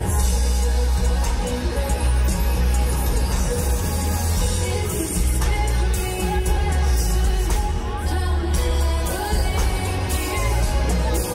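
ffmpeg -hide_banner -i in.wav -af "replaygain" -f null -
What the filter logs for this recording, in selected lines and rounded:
track_gain = +9.5 dB
track_peak = 0.259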